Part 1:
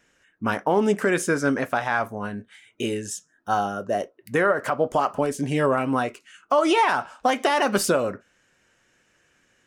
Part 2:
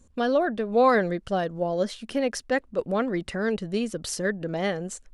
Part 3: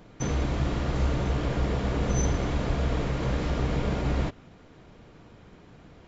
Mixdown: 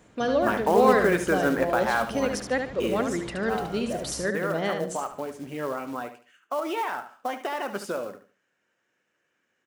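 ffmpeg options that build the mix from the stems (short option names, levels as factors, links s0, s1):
-filter_complex "[0:a]highpass=f=200:p=1,highshelf=f=3700:g=-10.5,acrusher=bits=5:mode=log:mix=0:aa=0.000001,volume=0.944,afade=t=out:st=3.19:d=0.23:silence=0.398107,asplit=2[s0][s1];[s1]volume=0.282[s2];[1:a]volume=0.841,asplit=2[s3][s4];[s4]volume=0.501[s5];[2:a]acompressor=threshold=0.00631:ratio=1.5,volume=0.596[s6];[s2][s5]amix=inputs=2:normalize=0,aecho=0:1:73|146|219|292:1|0.27|0.0729|0.0197[s7];[s0][s3][s6][s7]amix=inputs=4:normalize=0,highpass=f=140:p=1"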